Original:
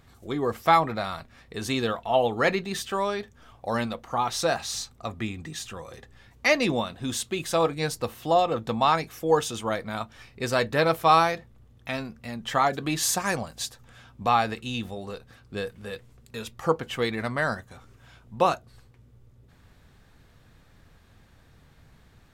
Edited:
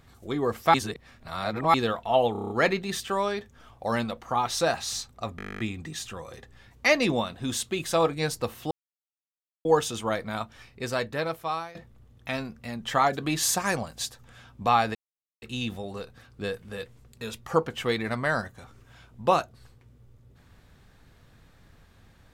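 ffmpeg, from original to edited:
ffmpeg -i in.wav -filter_complex "[0:a]asplit=24[link_01][link_02][link_03][link_04][link_05][link_06][link_07][link_08][link_09][link_10][link_11][link_12][link_13][link_14][link_15][link_16][link_17][link_18][link_19][link_20][link_21][link_22][link_23][link_24];[link_01]atrim=end=0.742[link_25];[link_02]atrim=start=0.738:end=1.742,asetpts=PTS-STARTPTS,areverse[link_26];[link_03]atrim=start=1.738:end=2.352[link_27];[link_04]atrim=start=2.318:end=2.352[link_28];[link_05]atrim=start=2.318:end=2.352[link_29];[link_06]atrim=start=2.318:end=2.352[link_30];[link_07]atrim=start=2.318:end=2.352[link_31];[link_08]atrim=start=2.318:end=2.352[link_32];[link_09]atrim=start=2.318:end=5.212[link_33];[link_10]atrim=start=5.188:end=5.212[link_34];[link_11]atrim=start=5.188:end=5.212[link_35];[link_12]atrim=start=5.188:end=5.212[link_36];[link_13]atrim=start=5.188:end=5.212[link_37];[link_14]atrim=start=5.188:end=5.212[link_38];[link_15]atrim=start=5.188:end=5.212[link_39];[link_16]atrim=start=5.188:end=5.212[link_40];[link_17]atrim=start=5.188:end=5.212[link_41];[link_18]atrim=start=5.188:end=5.212[link_42];[link_19]atrim=start=5.188:end=5.212[link_43];[link_20]atrim=start=5.188:end=8.31,asetpts=PTS-STARTPTS,afade=type=out:start_time=3.118:duration=0.004:curve=hsin[link_44];[link_21]atrim=start=8.31:end=9.25,asetpts=PTS-STARTPTS,volume=0[link_45];[link_22]atrim=start=9.25:end=11.35,asetpts=PTS-STARTPTS,afade=type=in:duration=0.004:curve=hsin,afade=type=out:start_time=0.71:duration=1.39:silence=0.0944061[link_46];[link_23]atrim=start=11.35:end=14.55,asetpts=PTS-STARTPTS,afade=type=in:duration=0.004:curve=hsin:silence=0.0944061,afade=type=out:start_time=3.196:duration=0.004:curve=hsin,apad=pad_dur=0.47[link_47];[link_24]atrim=start=14.55,asetpts=PTS-STARTPTS,afade=type=in:duration=0.004:curve=hsin[link_48];[link_25][link_26]acrossfade=duration=0.004:curve1=hsin:curve2=hsin[link_49];[link_49][link_27]acrossfade=duration=0.004:curve1=hsin:curve2=hsin[link_50];[link_50][link_28]acrossfade=duration=0.004:curve1=hsin:curve2=hsin[link_51];[link_51][link_29]acrossfade=duration=0.004:curve1=hsin:curve2=hsin[link_52];[link_52][link_30]acrossfade=duration=0.004:curve1=hsin:curve2=hsin[link_53];[link_53][link_31]acrossfade=duration=0.004:curve1=hsin:curve2=hsin[link_54];[link_54][link_32]acrossfade=duration=0.004:curve1=hsin:curve2=hsin[link_55];[link_55][link_33]acrossfade=duration=0.004:curve1=hsin:curve2=hsin[link_56];[link_56][link_34]acrossfade=duration=0.004:curve1=hsin:curve2=hsin[link_57];[link_57][link_35]acrossfade=duration=0.004:curve1=hsin:curve2=hsin[link_58];[link_58][link_36]acrossfade=duration=0.004:curve1=hsin:curve2=hsin[link_59];[link_59][link_37]acrossfade=duration=0.004:curve1=hsin:curve2=hsin[link_60];[link_60][link_38]acrossfade=duration=0.004:curve1=hsin:curve2=hsin[link_61];[link_61][link_39]acrossfade=duration=0.004:curve1=hsin:curve2=hsin[link_62];[link_62][link_40]acrossfade=duration=0.004:curve1=hsin:curve2=hsin[link_63];[link_63][link_41]acrossfade=duration=0.004:curve1=hsin:curve2=hsin[link_64];[link_64][link_42]acrossfade=duration=0.004:curve1=hsin:curve2=hsin[link_65];[link_65][link_43]acrossfade=duration=0.004:curve1=hsin:curve2=hsin[link_66];[link_44][link_45][link_46][link_47][link_48]concat=n=5:v=0:a=1[link_67];[link_66][link_67]acrossfade=duration=0.004:curve1=hsin:curve2=hsin" out.wav

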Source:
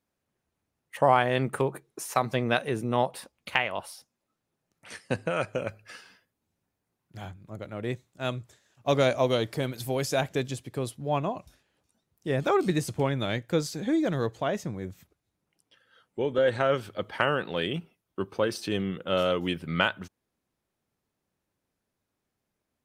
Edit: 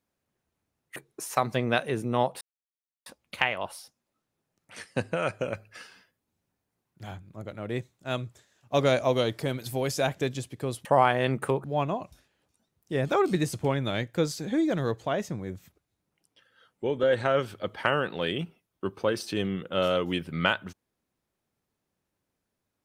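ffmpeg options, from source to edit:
ffmpeg -i in.wav -filter_complex "[0:a]asplit=5[link_01][link_02][link_03][link_04][link_05];[link_01]atrim=end=0.962[link_06];[link_02]atrim=start=1.748:end=3.2,asetpts=PTS-STARTPTS,afade=type=out:start_time=1.448:duration=0.004:curve=hsin,apad=pad_dur=0.65[link_07];[link_03]atrim=start=3.2:end=10.992,asetpts=PTS-STARTPTS,afade=type=in:duration=0.004:curve=hsin[link_08];[link_04]atrim=start=0.958:end=1.752[link_09];[link_05]atrim=start=10.988[link_10];[link_07][link_08]concat=n=2:v=0:a=1[link_11];[link_06][link_11]acrossfade=duration=0.004:curve1=hsin:curve2=hsin[link_12];[link_12][link_09]acrossfade=duration=0.004:curve1=hsin:curve2=hsin[link_13];[link_13][link_10]acrossfade=duration=0.004:curve1=hsin:curve2=hsin" out.wav

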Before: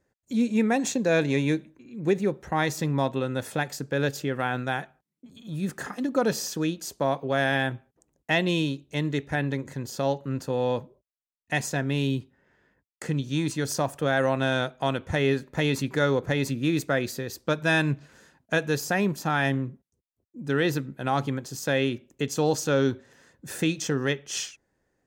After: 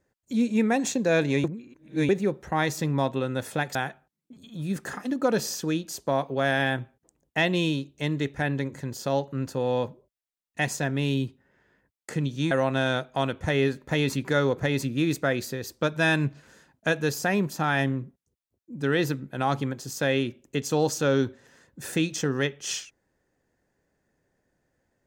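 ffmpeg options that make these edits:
ffmpeg -i in.wav -filter_complex "[0:a]asplit=5[link_01][link_02][link_03][link_04][link_05];[link_01]atrim=end=1.442[link_06];[link_02]atrim=start=1.438:end=2.092,asetpts=PTS-STARTPTS,areverse[link_07];[link_03]atrim=start=2.088:end=3.752[link_08];[link_04]atrim=start=4.678:end=13.442[link_09];[link_05]atrim=start=14.168[link_10];[link_06][link_07]acrossfade=duration=0.004:curve1=hsin:curve2=hsin[link_11];[link_11][link_08]acrossfade=duration=0.004:curve1=hsin:curve2=hsin[link_12];[link_12][link_09]acrossfade=duration=0.004:curve1=hsin:curve2=hsin[link_13];[link_13][link_10]acrossfade=duration=0.004:curve1=hsin:curve2=hsin" out.wav

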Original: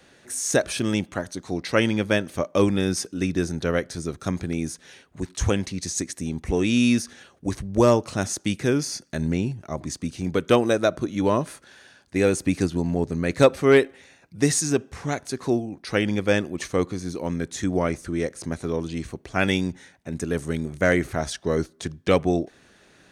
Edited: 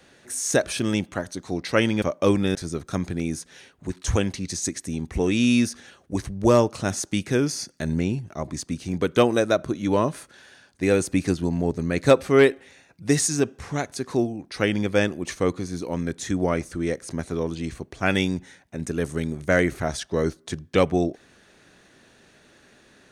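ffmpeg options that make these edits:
ffmpeg -i in.wav -filter_complex "[0:a]asplit=3[link_01][link_02][link_03];[link_01]atrim=end=2.022[link_04];[link_02]atrim=start=2.348:end=2.882[link_05];[link_03]atrim=start=3.878[link_06];[link_04][link_05]acrossfade=duration=0.004:curve1=hsin:curve2=hsin[link_07];[link_07][link_06]acrossfade=duration=0.004:curve1=hsin:curve2=hsin" out.wav

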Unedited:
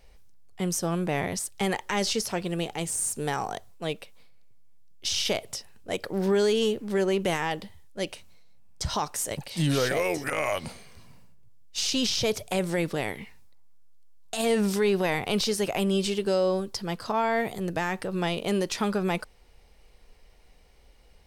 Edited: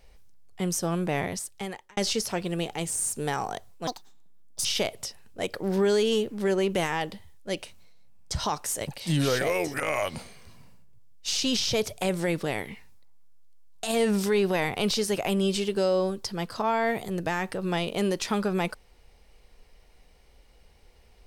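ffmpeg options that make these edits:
ffmpeg -i in.wav -filter_complex "[0:a]asplit=4[link_01][link_02][link_03][link_04];[link_01]atrim=end=1.97,asetpts=PTS-STARTPTS,afade=type=out:start_time=1.19:duration=0.78[link_05];[link_02]atrim=start=1.97:end=3.874,asetpts=PTS-STARTPTS,afade=type=in:duration=0.004:curve=hsin[link_06];[link_03]atrim=start=3.87:end=5.15,asetpts=PTS-STARTPTS,asetrate=72324,aresample=44100[link_07];[link_04]atrim=start=5.146[link_08];[link_05][link_06]concat=n=2:v=0:a=1[link_09];[link_09][link_07]acrossfade=duration=0.004:curve1=hsin:curve2=hsin[link_10];[link_10][link_08]acrossfade=duration=0.004:curve1=hsin:curve2=hsin" out.wav

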